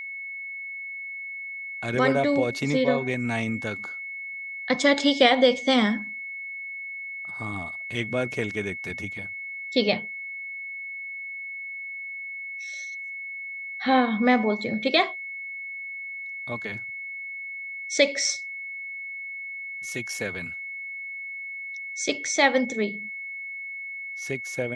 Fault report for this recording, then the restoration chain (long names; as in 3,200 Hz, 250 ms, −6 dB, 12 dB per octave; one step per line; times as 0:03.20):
whistle 2,200 Hz −33 dBFS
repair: notch filter 2,200 Hz, Q 30